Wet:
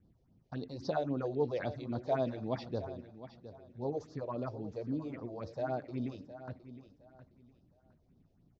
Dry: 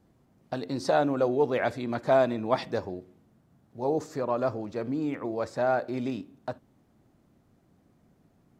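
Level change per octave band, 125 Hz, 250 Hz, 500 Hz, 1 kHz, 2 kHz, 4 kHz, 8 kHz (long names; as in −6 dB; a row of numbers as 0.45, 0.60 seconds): −3.0 dB, −7.5 dB, −9.5 dB, −11.5 dB, −13.5 dB, −10.5 dB, can't be measured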